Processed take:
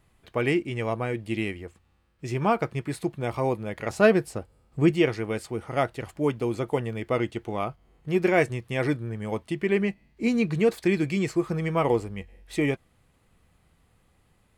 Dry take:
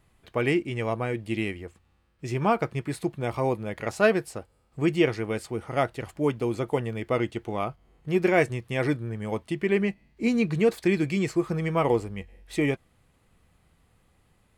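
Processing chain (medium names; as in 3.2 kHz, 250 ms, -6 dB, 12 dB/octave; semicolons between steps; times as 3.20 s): 3.90–4.91 s: bass shelf 420 Hz +6 dB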